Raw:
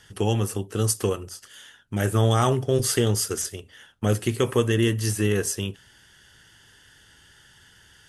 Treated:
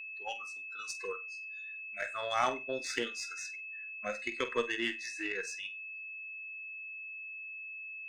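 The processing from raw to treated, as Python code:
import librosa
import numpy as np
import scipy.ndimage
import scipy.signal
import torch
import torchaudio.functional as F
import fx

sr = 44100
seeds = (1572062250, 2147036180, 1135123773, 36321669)

y = fx.noise_reduce_blind(x, sr, reduce_db=27)
y = fx.cabinet(y, sr, low_hz=290.0, low_slope=24, high_hz=5800.0, hz=(390.0, 2200.0, 4600.0), db=(-10, 8, -5))
y = fx.cheby_harmonics(y, sr, harmonics=(4, 7), levels_db=(-27, -29), full_scale_db=-11.0)
y = fx.room_flutter(y, sr, wall_m=8.1, rt60_s=0.23)
y = y + 10.0 ** (-36.0 / 20.0) * np.sin(2.0 * np.pi * 2600.0 * np.arange(len(y)) / sr)
y = y * 10.0 ** (-5.5 / 20.0)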